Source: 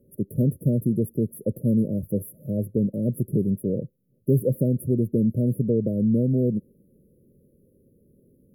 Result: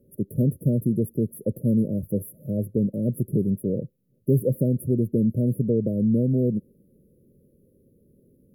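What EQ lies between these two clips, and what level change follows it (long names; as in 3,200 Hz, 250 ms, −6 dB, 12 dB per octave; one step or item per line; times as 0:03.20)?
dynamic equaliser 1,500 Hz, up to −3 dB, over −45 dBFS, Q 1.3
0.0 dB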